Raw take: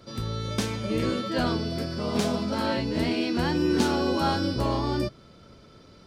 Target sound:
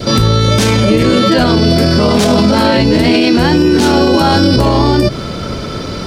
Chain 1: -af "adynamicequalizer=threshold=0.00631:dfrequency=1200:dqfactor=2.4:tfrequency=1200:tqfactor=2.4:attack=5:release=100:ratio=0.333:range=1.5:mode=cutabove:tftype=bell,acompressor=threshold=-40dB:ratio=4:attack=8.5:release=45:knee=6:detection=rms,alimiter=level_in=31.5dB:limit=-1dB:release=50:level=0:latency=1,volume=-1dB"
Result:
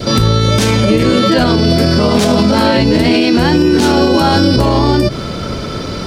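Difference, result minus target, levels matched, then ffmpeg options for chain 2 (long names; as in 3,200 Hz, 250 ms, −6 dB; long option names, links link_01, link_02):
downward compressor: peak gain reduction +7 dB
-af "adynamicequalizer=threshold=0.00631:dfrequency=1200:dqfactor=2.4:tfrequency=1200:tqfactor=2.4:attack=5:release=100:ratio=0.333:range=1.5:mode=cutabove:tftype=bell,acompressor=threshold=-30.5dB:ratio=4:attack=8.5:release=45:knee=6:detection=rms,alimiter=level_in=31.5dB:limit=-1dB:release=50:level=0:latency=1,volume=-1dB"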